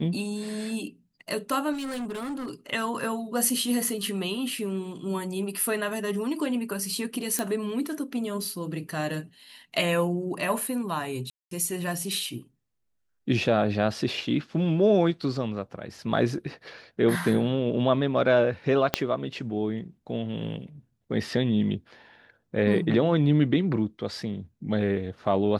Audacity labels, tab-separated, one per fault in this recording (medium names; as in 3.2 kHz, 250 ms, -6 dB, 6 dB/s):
1.720000	2.510000	clipped -29.5 dBFS
7.390000	7.390000	pop
11.300000	11.510000	dropout 213 ms
18.940000	18.940000	pop -5 dBFS